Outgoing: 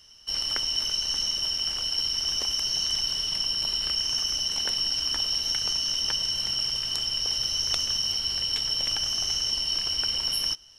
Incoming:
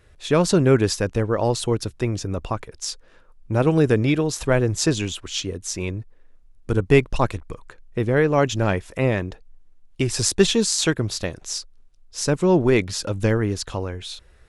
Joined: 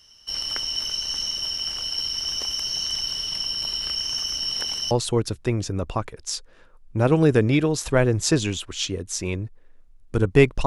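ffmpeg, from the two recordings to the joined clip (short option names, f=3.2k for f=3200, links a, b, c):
-filter_complex "[0:a]apad=whole_dur=10.66,atrim=end=10.66,asplit=2[a][b];[a]atrim=end=4.392[c];[b]atrim=start=4.388:end=4.912,asetpts=PTS-STARTPTS,areverse[d];[1:a]atrim=start=1.458:end=7.21[e];[c][d]acrossfade=d=0.004:c1=hsin:c2=hsin[f];[f][e]acrossfade=d=0.004:c1=hsin:c2=hsin"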